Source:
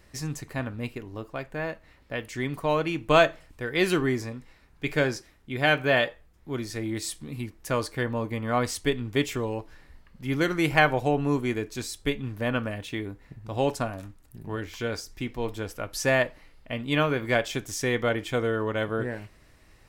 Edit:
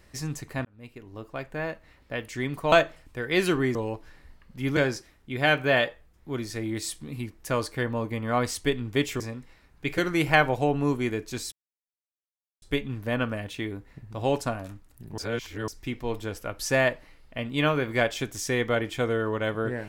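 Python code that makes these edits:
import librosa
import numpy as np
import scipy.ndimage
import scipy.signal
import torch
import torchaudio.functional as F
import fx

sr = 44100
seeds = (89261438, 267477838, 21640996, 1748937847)

y = fx.edit(x, sr, fx.fade_in_span(start_s=0.65, length_s=0.78),
    fx.cut(start_s=2.72, length_s=0.44),
    fx.swap(start_s=4.19, length_s=0.78, other_s=9.4, other_length_s=1.02),
    fx.insert_silence(at_s=11.96, length_s=1.1),
    fx.reverse_span(start_s=14.52, length_s=0.5), tone=tone)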